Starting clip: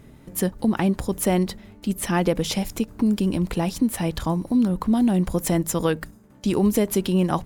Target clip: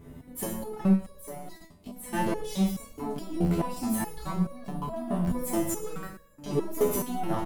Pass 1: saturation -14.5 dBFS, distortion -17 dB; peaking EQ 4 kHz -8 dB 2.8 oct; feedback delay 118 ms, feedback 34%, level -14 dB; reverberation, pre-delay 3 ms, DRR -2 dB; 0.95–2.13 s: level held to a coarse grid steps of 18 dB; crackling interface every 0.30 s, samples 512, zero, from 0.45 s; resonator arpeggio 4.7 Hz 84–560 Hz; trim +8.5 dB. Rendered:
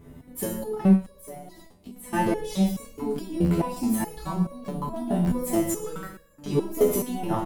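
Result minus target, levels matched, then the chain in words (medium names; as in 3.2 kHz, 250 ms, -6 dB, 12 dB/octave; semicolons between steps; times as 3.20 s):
saturation: distortion -9 dB
saturation -23 dBFS, distortion -8 dB; peaking EQ 4 kHz -8 dB 2.8 oct; feedback delay 118 ms, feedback 34%, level -14 dB; reverberation, pre-delay 3 ms, DRR -2 dB; 0.95–2.13 s: level held to a coarse grid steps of 18 dB; crackling interface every 0.30 s, samples 512, zero, from 0.45 s; resonator arpeggio 4.7 Hz 84–560 Hz; trim +8.5 dB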